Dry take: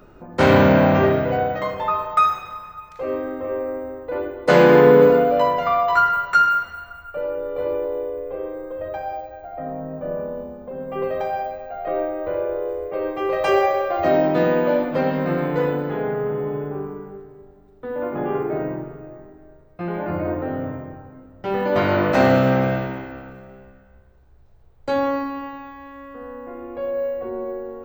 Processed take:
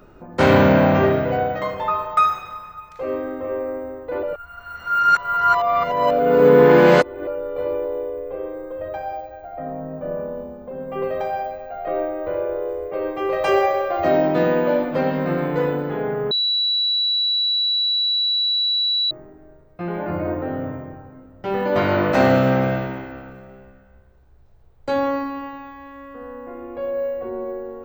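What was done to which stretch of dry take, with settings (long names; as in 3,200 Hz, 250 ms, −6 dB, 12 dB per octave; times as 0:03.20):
0:04.23–0:07.27: reverse
0:16.31–0:19.11: beep over 3,930 Hz −17 dBFS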